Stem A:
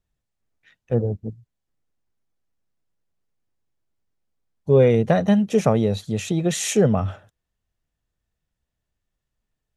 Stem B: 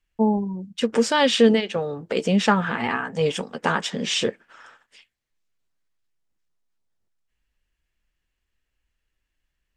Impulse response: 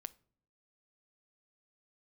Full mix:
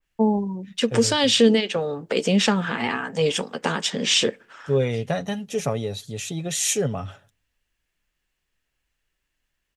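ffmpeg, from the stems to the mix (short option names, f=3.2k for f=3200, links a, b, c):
-filter_complex "[0:a]highshelf=f=2.1k:g=10,aecho=1:1:7.2:0.42,volume=-10.5dB,asplit=2[a][b];[b]volume=-7.5dB[c];[1:a]acrossover=split=460|3000[d][e][f];[e]acompressor=threshold=-28dB:ratio=6[g];[d][g][f]amix=inputs=3:normalize=0,lowshelf=f=170:g=-7,volume=0.5dB,asplit=2[h][i];[i]volume=-4.5dB[j];[2:a]atrim=start_sample=2205[k];[c][j]amix=inputs=2:normalize=0[l];[l][k]afir=irnorm=-1:irlink=0[m];[a][h][m]amix=inputs=3:normalize=0,adynamicequalizer=threshold=0.0316:dfrequency=2300:dqfactor=0.7:tfrequency=2300:tqfactor=0.7:attack=5:release=100:ratio=0.375:range=1.5:mode=boostabove:tftype=highshelf"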